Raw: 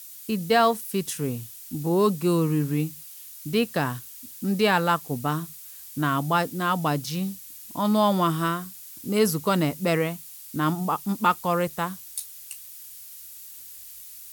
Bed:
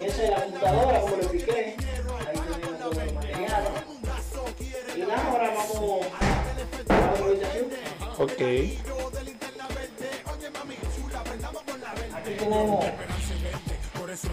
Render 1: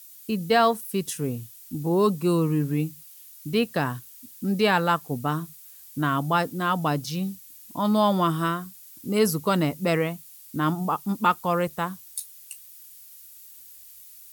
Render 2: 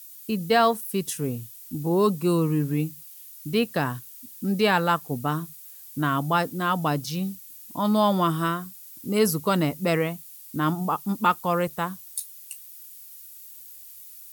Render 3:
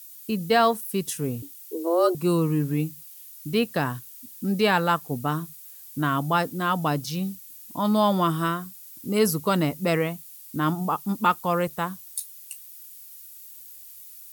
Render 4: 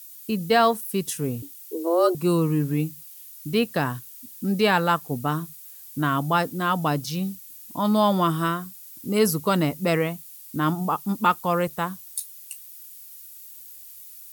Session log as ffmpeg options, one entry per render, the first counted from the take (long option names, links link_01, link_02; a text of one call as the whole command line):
ffmpeg -i in.wav -af "afftdn=noise_reduction=6:noise_floor=-43" out.wav
ffmpeg -i in.wav -af "highshelf=frequency=12000:gain=4" out.wav
ffmpeg -i in.wav -filter_complex "[0:a]asettb=1/sr,asplit=3[link_01][link_02][link_03];[link_01]atrim=end=1.424[link_04];[link_02]atrim=start=1.42:end=2.15,asetpts=PTS-STARTPTS,afade=type=in:duration=0.004:curve=qsin,afade=type=out:start_time=0.726:duration=0.004:curve=qsin,afreqshift=170[link_05];[link_03]atrim=start=2.146[link_06];[link_04][link_05]acrossfade=duration=0.004:curve1=hsin:curve2=qsin[link_07];[link_07][link_06]acrossfade=duration=0.004:curve1=qsin:curve2=hsin" out.wav
ffmpeg -i in.wav -af "volume=1dB" out.wav